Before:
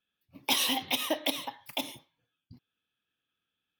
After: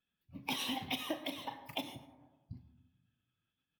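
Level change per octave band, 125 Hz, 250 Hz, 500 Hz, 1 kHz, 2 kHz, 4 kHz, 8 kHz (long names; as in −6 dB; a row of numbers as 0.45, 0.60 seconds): +4.0, −4.5, −8.5, −6.5, −8.0, −10.0, −14.0 decibels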